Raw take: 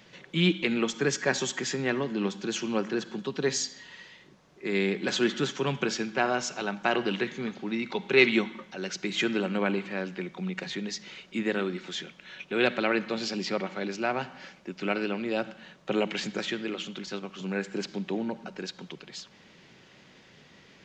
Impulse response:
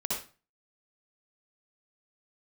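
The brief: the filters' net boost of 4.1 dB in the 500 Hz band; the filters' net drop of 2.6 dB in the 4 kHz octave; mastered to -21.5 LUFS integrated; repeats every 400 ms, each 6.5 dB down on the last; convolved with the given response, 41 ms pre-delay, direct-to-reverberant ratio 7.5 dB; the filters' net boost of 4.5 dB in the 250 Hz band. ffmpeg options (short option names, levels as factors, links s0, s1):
-filter_complex "[0:a]equalizer=f=250:t=o:g=5,equalizer=f=500:t=o:g=3.5,equalizer=f=4000:t=o:g=-3.5,aecho=1:1:400|800|1200|1600|2000|2400:0.473|0.222|0.105|0.0491|0.0231|0.0109,asplit=2[s0][s1];[1:a]atrim=start_sample=2205,adelay=41[s2];[s1][s2]afir=irnorm=-1:irlink=0,volume=0.224[s3];[s0][s3]amix=inputs=2:normalize=0,volume=1.5"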